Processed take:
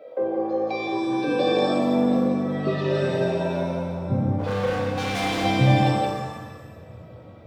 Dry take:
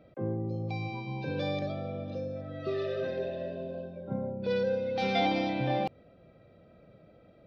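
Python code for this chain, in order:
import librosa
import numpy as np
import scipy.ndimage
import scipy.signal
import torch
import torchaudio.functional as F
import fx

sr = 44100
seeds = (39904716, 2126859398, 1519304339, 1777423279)

y = fx.filter_sweep_highpass(x, sr, from_hz=510.0, to_hz=92.0, start_s=0.26, end_s=3.98, q=3.7)
y = y + 10.0 ** (-4.0 / 20.0) * np.pad(y, (int(172 * sr / 1000.0), 0))[:len(y)]
y = fx.overload_stage(y, sr, gain_db=32.0, at=(4.38, 5.44), fade=0.02)
y = fx.rev_shimmer(y, sr, seeds[0], rt60_s=1.3, semitones=7, shimmer_db=-8, drr_db=1.5)
y = y * 10.0 ** (6.5 / 20.0)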